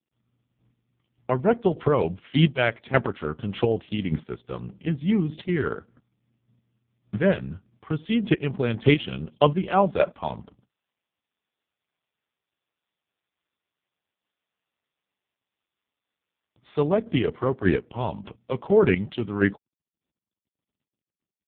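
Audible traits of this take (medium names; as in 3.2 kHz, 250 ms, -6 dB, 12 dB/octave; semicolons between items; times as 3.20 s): chopped level 1.7 Hz, depth 60%, duty 20%; AMR-NB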